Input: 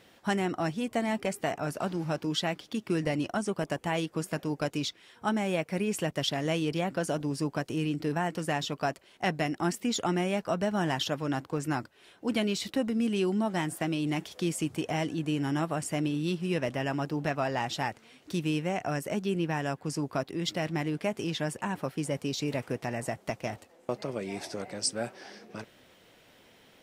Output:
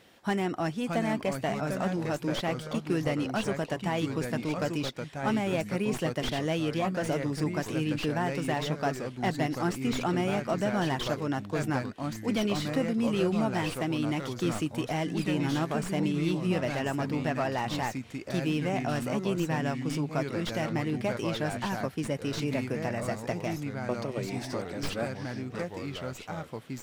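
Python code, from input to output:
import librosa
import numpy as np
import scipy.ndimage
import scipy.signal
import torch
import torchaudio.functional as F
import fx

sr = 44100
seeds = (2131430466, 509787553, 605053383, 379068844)

y = fx.tracing_dist(x, sr, depth_ms=0.1)
y = fx.echo_pitch(y, sr, ms=566, semitones=-3, count=2, db_per_echo=-6.0)
y = fx.slew_limit(y, sr, full_power_hz=80.0)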